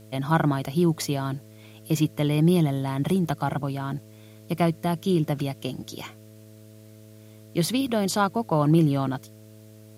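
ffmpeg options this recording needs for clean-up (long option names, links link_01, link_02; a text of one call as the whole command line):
ffmpeg -i in.wav -af "bandreject=frequency=107.9:width_type=h:width=4,bandreject=frequency=215.8:width_type=h:width=4,bandreject=frequency=323.7:width_type=h:width=4,bandreject=frequency=431.6:width_type=h:width=4,bandreject=frequency=539.5:width_type=h:width=4,bandreject=frequency=647.4:width_type=h:width=4,agate=range=-21dB:threshold=-40dB" out.wav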